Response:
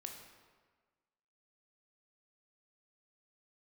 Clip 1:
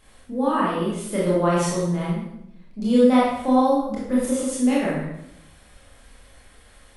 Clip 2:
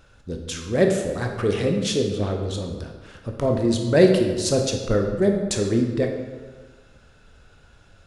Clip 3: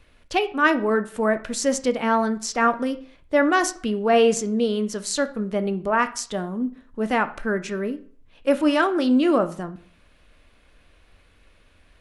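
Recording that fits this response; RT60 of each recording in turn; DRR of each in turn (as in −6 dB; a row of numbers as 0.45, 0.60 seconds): 2; 0.80, 1.5, 0.50 seconds; −7.0, 2.5, 9.5 decibels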